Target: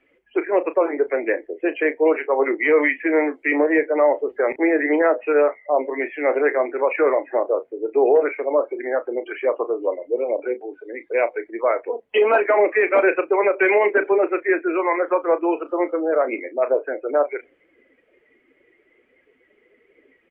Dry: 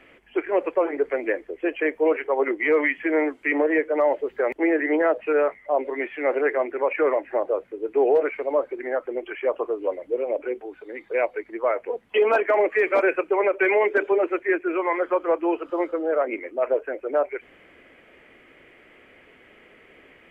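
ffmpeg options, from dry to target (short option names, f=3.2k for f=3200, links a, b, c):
-filter_complex "[0:a]afftdn=nr=18:nf=-42,asplit=2[a][b];[b]adelay=34,volume=-12.5dB[c];[a][c]amix=inputs=2:normalize=0,volume=3dB"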